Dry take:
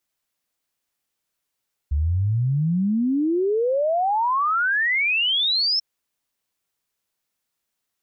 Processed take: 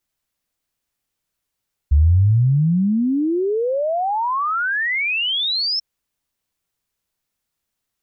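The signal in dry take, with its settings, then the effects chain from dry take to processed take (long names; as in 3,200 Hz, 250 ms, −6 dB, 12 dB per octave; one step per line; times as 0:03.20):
exponential sine sweep 69 Hz → 5,400 Hz 3.89 s −18 dBFS
low-shelf EQ 140 Hz +11 dB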